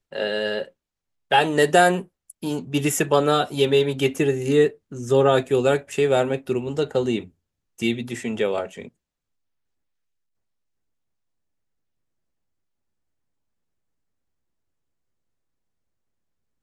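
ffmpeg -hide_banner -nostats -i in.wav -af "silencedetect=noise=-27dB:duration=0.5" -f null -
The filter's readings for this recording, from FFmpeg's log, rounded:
silence_start: 0.63
silence_end: 1.31 | silence_duration: 0.69
silence_start: 7.21
silence_end: 7.82 | silence_duration: 0.61
silence_start: 8.82
silence_end: 16.62 | silence_duration: 7.81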